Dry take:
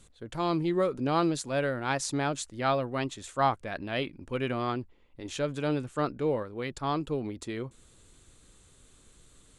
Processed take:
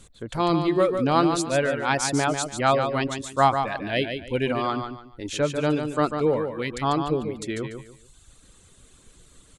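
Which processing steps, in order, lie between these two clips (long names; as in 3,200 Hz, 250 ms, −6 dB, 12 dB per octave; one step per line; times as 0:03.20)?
reverb reduction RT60 1.2 s
0:03.55–0:04.51: Butterworth band-reject 1,200 Hz, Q 2.4
repeating echo 145 ms, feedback 28%, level −7 dB
level +7 dB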